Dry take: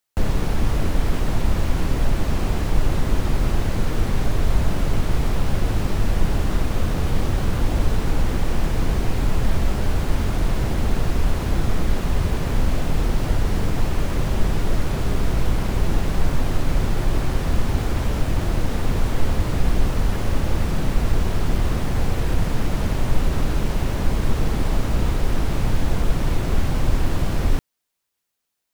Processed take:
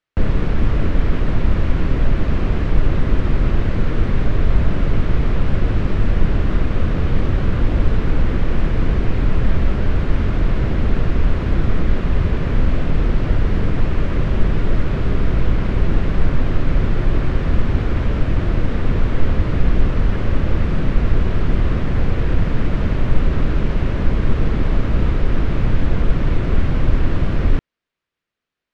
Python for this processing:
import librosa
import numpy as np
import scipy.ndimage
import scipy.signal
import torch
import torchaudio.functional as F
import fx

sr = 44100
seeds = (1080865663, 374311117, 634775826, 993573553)

y = scipy.signal.sosfilt(scipy.signal.butter(2, 2600.0, 'lowpass', fs=sr, output='sos'), x)
y = fx.peak_eq(y, sr, hz=820.0, db=-7.0, octaves=0.65)
y = y * librosa.db_to_amplitude(4.0)